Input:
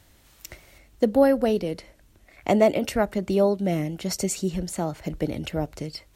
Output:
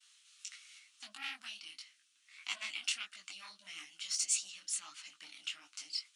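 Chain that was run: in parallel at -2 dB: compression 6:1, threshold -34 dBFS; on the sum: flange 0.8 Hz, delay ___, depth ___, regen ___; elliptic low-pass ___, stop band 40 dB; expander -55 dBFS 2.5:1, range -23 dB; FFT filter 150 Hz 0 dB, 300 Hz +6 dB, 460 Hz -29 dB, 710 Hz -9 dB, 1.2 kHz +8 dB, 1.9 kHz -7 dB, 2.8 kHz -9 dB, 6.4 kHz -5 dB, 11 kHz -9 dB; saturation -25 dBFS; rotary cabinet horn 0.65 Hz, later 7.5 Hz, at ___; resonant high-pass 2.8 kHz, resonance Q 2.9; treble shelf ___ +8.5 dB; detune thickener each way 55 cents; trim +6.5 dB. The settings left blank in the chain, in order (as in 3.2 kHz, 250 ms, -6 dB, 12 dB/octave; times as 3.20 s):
3.8 ms, 4.4 ms, +65%, 10 kHz, 2.82 s, 4.9 kHz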